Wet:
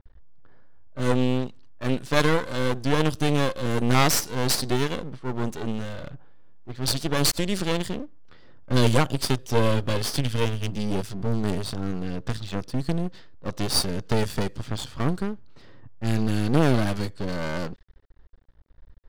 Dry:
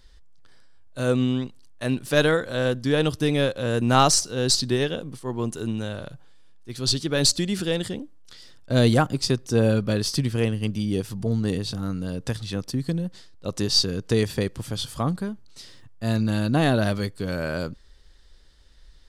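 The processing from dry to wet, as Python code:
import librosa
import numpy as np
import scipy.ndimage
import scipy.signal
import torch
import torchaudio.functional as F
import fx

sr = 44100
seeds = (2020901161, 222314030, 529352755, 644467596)

y = fx.env_lowpass(x, sr, base_hz=1000.0, full_db=-21.0)
y = fx.graphic_eq_31(y, sr, hz=(200, 315, 500, 3150), db=(-9, -4, 4, 9), at=(8.76, 10.72))
y = np.maximum(y, 0.0)
y = F.gain(torch.from_numpy(y), 4.0).numpy()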